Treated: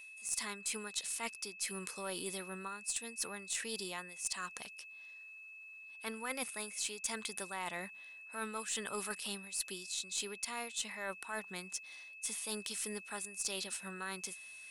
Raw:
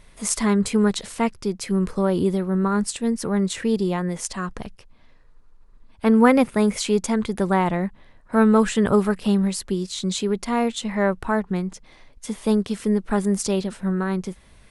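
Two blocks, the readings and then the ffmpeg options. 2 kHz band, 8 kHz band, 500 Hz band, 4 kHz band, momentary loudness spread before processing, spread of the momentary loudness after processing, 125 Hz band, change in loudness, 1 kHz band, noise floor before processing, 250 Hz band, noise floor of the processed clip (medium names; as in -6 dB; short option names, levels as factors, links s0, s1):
-10.5 dB, -6.0 dB, -23.5 dB, -8.0 dB, 10 LU, 10 LU, -29.5 dB, -17.5 dB, -18.5 dB, -51 dBFS, -29.5 dB, -53 dBFS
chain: -af "aderivative,areverse,acompressor=threshold=0.00891:ratio=10,areverse,aeval=exprs='val(0)+0.00178*sin(2*PI*2600*n/s)':c=same,aeval=exprs='0.0562*(cos(1*acos(clip(val(0)/0.0562,-1,1)))-cos(1*PI/2))+0.00316*(cos(4*acos(clip(val(0)/0.0562,-1,1)))-cos(4*PI/2))+0.000631*(cos(6*acos(clip(val(0)/0.0562,-1,1)))-cos(6*PI/2))':c=same,volume=1.78"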